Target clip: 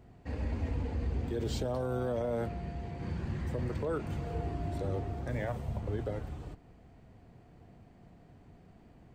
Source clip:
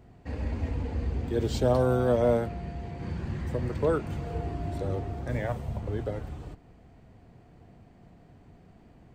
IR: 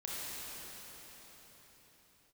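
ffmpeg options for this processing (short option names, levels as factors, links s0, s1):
-af "alimiter=limit=0.075:level=0:latency=1:release=30,volume=0.75"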